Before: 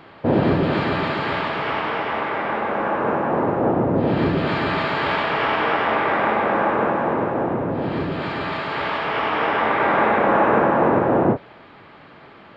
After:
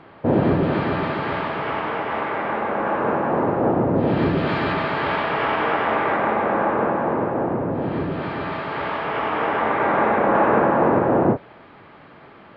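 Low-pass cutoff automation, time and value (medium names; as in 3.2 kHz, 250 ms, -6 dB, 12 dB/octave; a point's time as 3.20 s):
low-pass 6 dB/octave
1.8 kHz
from 2.11 s 2.6 kHz
from 2.87 s 4.4 kHz
from 4.73 s 2.4 kHz
from 6.16 s 1.7 kHz
from 10.35 s 2.6 kHz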